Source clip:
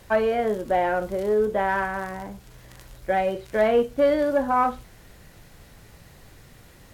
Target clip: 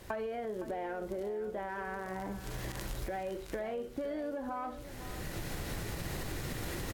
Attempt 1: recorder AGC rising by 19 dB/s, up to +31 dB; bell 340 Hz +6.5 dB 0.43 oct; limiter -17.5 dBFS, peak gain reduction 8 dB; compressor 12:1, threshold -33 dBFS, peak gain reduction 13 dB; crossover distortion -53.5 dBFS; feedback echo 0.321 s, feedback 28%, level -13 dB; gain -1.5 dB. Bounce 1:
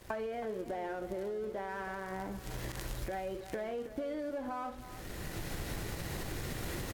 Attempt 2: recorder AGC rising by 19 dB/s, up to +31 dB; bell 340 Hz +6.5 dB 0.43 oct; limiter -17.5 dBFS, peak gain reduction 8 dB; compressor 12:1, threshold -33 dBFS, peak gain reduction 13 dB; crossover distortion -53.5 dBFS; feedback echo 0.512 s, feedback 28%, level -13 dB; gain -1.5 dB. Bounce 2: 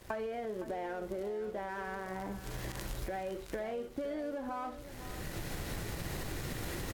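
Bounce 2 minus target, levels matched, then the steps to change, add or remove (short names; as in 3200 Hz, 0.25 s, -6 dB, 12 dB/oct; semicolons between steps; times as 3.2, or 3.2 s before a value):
crossover distortion: distortion +10 dB
change: crossover distortion -63.5 dBFS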